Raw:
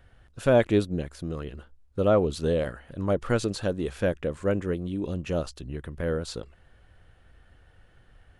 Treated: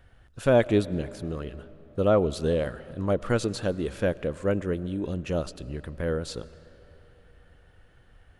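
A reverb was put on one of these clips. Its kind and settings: algorithmic reverb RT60 3.7 s, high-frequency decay 0.65×, pre-delay 65 ms, DRR 18.5 dB

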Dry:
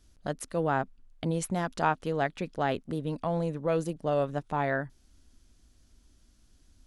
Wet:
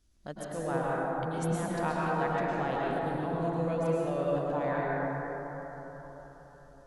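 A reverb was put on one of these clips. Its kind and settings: plate-style reverb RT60 4.4 s, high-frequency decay 0.3×, pre-delay 95 ms, DRR -6.5 dB; trim -8.5 dB

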